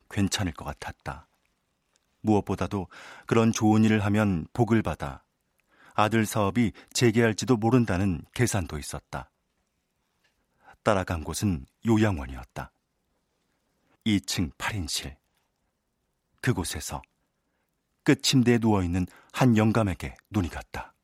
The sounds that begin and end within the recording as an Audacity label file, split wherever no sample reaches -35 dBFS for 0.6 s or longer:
2.240000	5.160000	sound
5.980000	9.220000	sound
10.860000	12.650000	sound
14.060000	15.090000	sound
16.440000	16.990000	sound